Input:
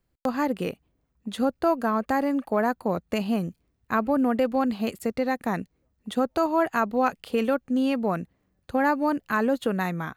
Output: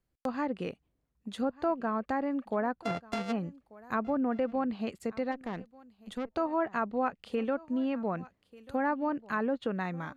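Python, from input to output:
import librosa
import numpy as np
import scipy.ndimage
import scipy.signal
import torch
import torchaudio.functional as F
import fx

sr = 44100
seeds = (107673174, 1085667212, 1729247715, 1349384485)

y = fx.sample_sort(x, sr, block=64, at=(2.83, 3.31), fade=0.02)
y = y + 10.0 ** (-21.5 / 20.0) * np.pad(y, (int(1190 * sr / 1000.0), 0))[:len(y)]
y = fx.env_lowpass_down(y, sr, base_hz=2200.0, full_db=-19.0)
y = fx.tube_stage(y, sr, drive_db=23.0, bias=0.6, at=(5.31, 6.31), fade=0.02)
y = F.gain(torch.from_numpy(y), -7.0).numpy()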